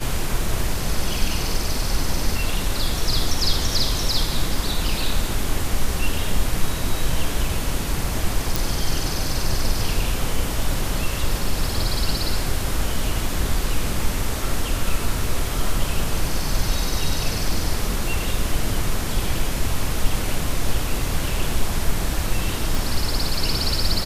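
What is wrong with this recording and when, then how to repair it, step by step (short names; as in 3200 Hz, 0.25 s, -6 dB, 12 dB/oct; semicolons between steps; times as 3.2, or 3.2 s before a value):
8.56 pop
22.75 pop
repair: de-click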